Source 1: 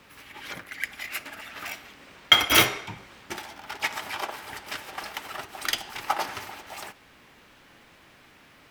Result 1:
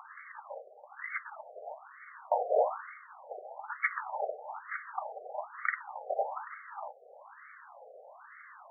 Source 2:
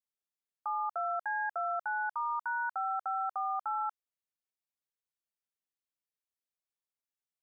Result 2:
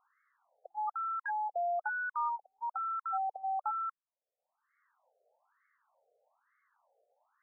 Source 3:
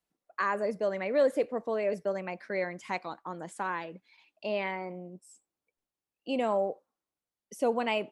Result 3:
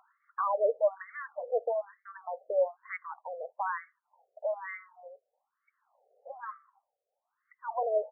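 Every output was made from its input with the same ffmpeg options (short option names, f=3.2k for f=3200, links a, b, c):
-af "acompressor=mode=upward:threshold=-39dB:ratio=2.5,lowshelf=f=360:t=q:w=3:g=-11.5,afftfilt=real='re*between(b*sr/1024,540*pow(1600/540,0.5+0.5*sin(2*PI*1.1*pts/sr))/1.41,540*pow(1600/540,0.5+0.5*sin(2*PI*1.1*pts/sr))*1.41)':imag='im*between(b*sr/1024,540*pow(1600/540,0.5+0.5*sin(2*PI*1.1*pts/sr))/1.41,540*pow(1600/540,0.5+0.5*sin(2*PI*1.1*pts/sr))*1.41)':win_size=1024:overlap=0.75"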